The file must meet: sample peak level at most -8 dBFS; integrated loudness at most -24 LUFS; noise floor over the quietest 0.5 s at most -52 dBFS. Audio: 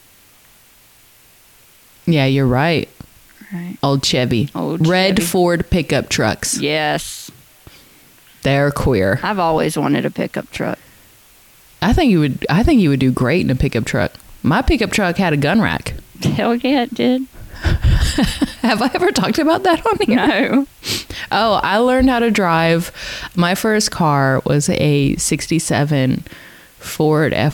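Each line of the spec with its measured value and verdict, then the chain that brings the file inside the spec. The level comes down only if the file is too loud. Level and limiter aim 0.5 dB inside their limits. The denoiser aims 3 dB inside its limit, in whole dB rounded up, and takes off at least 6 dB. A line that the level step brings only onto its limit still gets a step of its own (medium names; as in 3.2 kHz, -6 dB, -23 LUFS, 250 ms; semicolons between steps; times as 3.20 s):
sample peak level -5.0 dBFS: fail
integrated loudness -16.0 LUFS: fail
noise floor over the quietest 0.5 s -48 dBFS: fail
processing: trim -8.5 dB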